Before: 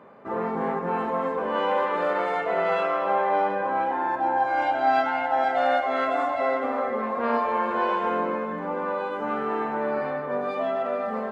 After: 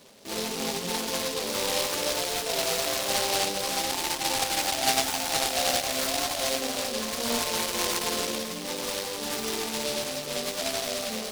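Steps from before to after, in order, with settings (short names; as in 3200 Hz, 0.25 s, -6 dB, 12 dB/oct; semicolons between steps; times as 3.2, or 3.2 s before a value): flange 0.91 Hz, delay 6.7 ms, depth 9.3 ms, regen -40%; noise-modulated delay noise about 3900 Hz, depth 0.22 ms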